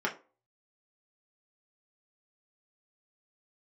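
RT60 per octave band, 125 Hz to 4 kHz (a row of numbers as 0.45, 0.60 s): 0.25, 0.35, 0.40, 0.35, 0.25, 0.20 s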